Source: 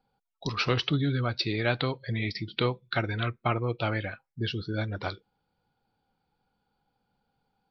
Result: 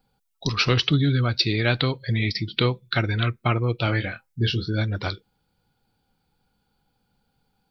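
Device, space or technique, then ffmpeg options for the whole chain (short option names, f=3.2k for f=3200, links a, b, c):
smiley-face EQ: -filter_complex "[0:a]lowshelf=f=110:g=5,equalizer=f=770:t=o:w=1.5:g=-4.5,highshelf=f=5.3k:g=8,asettb=1/sr,asplit=3[a][b][c];[a]atrim=end=3.854[d];[b]atrim=start=3.85:end=4.7,asetpts=PTS-STARTPTS,afade=t=in:d=0.004:c=qsin,afade=t=out:st=0.846:d=0.004:c=qsin,asplit=2[e][f];[f]adelay=25,volume=-6.5dB[g];[e][g]amix=inputs=2:normalize=0,atrim=end_sample=37485[h];[c]atrim=start=4.696[i];[d][h]acrossfade=d=0.004:c1=hsin:c2=qsin[j];[j][i]acrossfade=d=0.004:c1=qsin:c2=hsin,volume=5.5dB"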